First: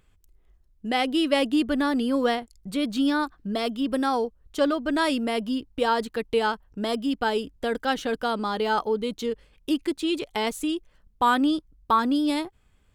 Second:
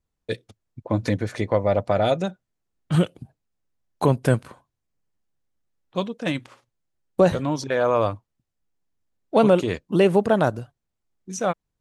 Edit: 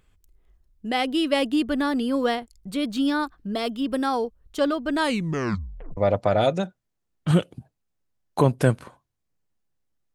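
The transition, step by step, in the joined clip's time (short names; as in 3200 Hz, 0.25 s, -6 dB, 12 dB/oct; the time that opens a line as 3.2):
first
4.99 tape stop 0.98 s
5.97 switch to second from 1.61 s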